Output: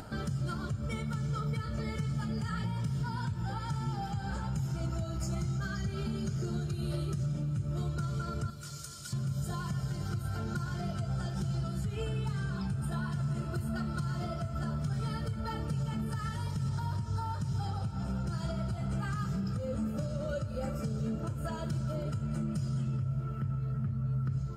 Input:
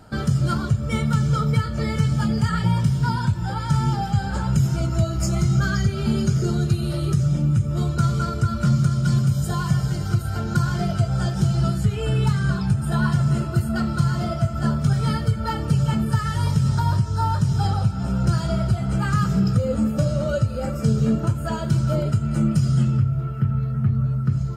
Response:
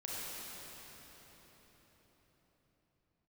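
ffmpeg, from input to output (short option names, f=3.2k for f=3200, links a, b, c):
-filter_complex "[0:a]asettb=1/sr,asplit=3[a][b][c];[a]atrim=end=8.504[d];[b]atrim=start=8.5:end=9.13,asetpts=PTS-STARTPTS,afade=t=in:d=0.004:c=qsin,afade=t=out:st=0.626:d=0.004:c=qsin,aderivative[e];[c]atrim=start=9.126[f];[d][e]acrossfade=d=0.004:c1=hsin:c2=qsin[g];[g][f]acrossfade=d=0.004:c1=qsin:c2=hsin,alimiter=limit=-19dB:level=0:latency=1:release=156,acompressor=mode=upward:threshold=-30dB:ratio=2.5,asplit=2[h][i];[1:a]atrim=start_sample=2205,asetrate=24696,aresample=44100,adelay=66[j];[i][j]afir=irnorm=-1:irlink=0,volume=-20.5dB[k];[h][k]amix=inputs=2:normalize=0,volume=-7.5dB"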